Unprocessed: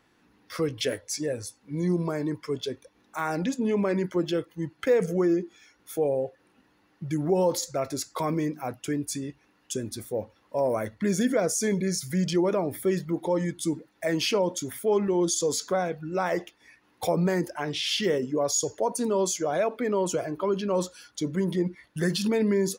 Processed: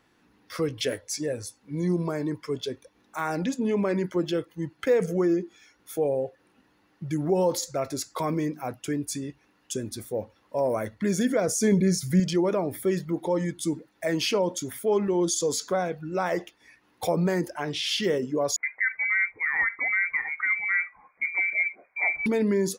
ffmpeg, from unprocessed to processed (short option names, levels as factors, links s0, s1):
-filter_complex "[0:a]asettb=1/sr,asplit=3[s0][s1][s2];[s0]atrim=end=11.484[s3];[s1]atrim=start=11.48:end=12.2,asetpts=PTS-STARTPTS,afade=t=in:d=0.004:c=qsin,afade=t=out:st=0.716:d=0.004:c=qsin,lowshelf=f=380:g=7.5[s4];[s2]atrim=start=12.196[s5];[s3][s4]acrossfade=d=0.004:c1=hsin:c2=qsin[s6];[s6][s5]acrossfade=d=0.004:c1=qsin:c2=hsin,asettb=1/sr,asplit=3[s7][s8][s9];[s7]atrim=end=18.564[s10];[s8]atrim=start=18.56:end=22.26,asetpts=PTS-STARTPTS,afade=t=in:d=0.004:c=qsin,afade=t=out:st=3.696:d=0.004:c=qsin,lowpass=f=2100:t=q:w=0.5098,lowpass=f=2100:t=q:w=0.6013,lowpass=f=2100:t=q:w=0.9,lowpass=f=2100:t=q:w=2.563,afreqshift=-2500[s11];[s9]atrim=start=22.256[s12];[s10][s11]acrossfade=d=0.004:c1=hsin:c2=qsin[s13];[s13][s12]acrossfade=d=0.004:c1=qsin:c2=hsin"